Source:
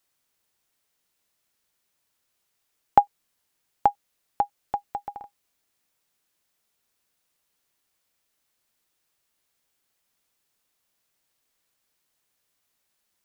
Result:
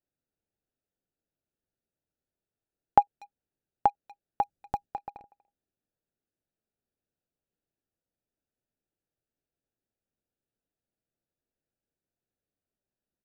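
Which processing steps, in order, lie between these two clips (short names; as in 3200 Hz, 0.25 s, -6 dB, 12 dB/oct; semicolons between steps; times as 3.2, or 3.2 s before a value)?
Wiener smoothing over 41 samples; 4.42–4.86 tone controls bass +10 dB, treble +13 dB; speakerphone echo 0.24 s, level -23 dB; gain -3 dB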